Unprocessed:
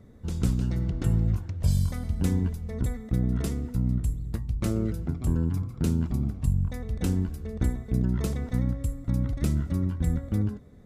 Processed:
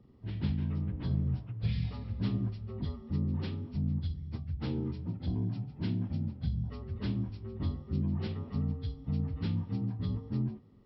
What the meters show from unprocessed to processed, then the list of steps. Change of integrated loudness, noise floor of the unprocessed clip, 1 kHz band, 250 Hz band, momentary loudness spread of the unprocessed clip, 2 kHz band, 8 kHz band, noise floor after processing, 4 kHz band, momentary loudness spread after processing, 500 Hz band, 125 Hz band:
-6.5 dB, -43 dBFS, -6.5 dB, -6.0 dB, 5 LU, -7.0 dB, under -35 dB, -51 dBFS, -2.5 dB, 5 LU, -8.0 dB, -6.0 dB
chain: inharmonic rescaling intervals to 76%; high shelf 5300 Hz -4.5 dB; gain -5.5 dB

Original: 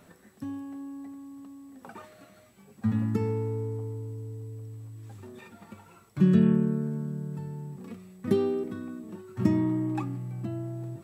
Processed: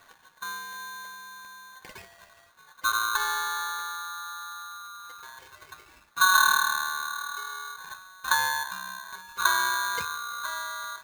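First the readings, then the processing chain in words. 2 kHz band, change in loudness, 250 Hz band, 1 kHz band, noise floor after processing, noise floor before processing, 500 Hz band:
+24.5 dB, +2.5 dB, under -30 dB, +18.5 dB, -58 dBFS, -57 dBFS, -17.0 dB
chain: median filter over 15 samples; polarity switched at an audio rate 1300 Hz

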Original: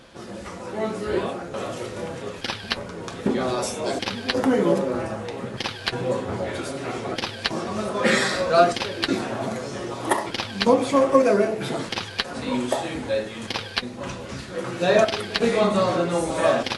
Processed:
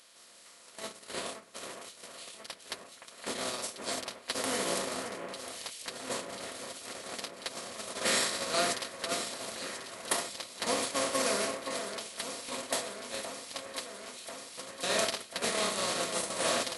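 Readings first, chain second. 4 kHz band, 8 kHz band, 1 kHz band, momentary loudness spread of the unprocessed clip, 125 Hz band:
-5.5 dB, +2.5 dB, -11.5 dB, 13 LU, -20.0 dB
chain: per-bin compression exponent 0.4; gate -13 dBFS, range -29 dB; pre-emphasis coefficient 0.9; on a send: echo with dull and thin repeats by turns 0.52 s, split 2400 Hz, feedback 81%, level -8 dB; on the sum: mismatched tape noise reduction encoder only; gain -2 dB

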